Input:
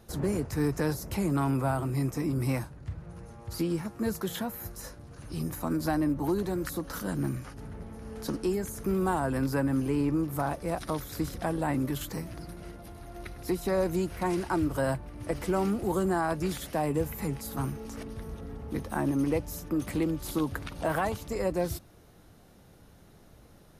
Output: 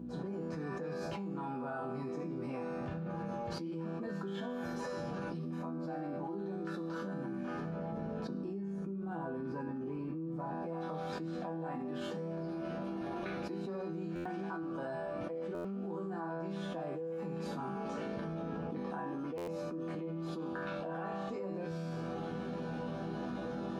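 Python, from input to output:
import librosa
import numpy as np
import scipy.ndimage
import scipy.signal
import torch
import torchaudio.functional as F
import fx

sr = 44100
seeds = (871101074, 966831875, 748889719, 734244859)

y = fx.fade_in_head(x, sr, length_s=1.43)
y = fx.low_shelf(y, sr, hz=450.0, db=11.5, at=(7.92, 10.63))
y = fx.rider(y, sr, range_db=4, speed_s=2.0)
y = fx.add_hum(y, sr, base_hz=60, snr_db=22)
y = scipy.signal.sosfilt(scipy.signal.butter(2, 200.0, 'highpass', fs=sr, output='sos'), y)
y = fx.spacing_loss(y, sr, db_at_10k=33)
y = fx.notch(y, sr, hz=2000.0, q=5.8)
y = fx.resonator_bank(y, sr, root=52, chord='minor', decay_s=0.66)
y = fx.buffer_glitch(y, sr, at_s=(14.15, 15.54, 19.37), block=512, repeats=8)
y = fx.env_flatten(y, sr, amount_pct=100)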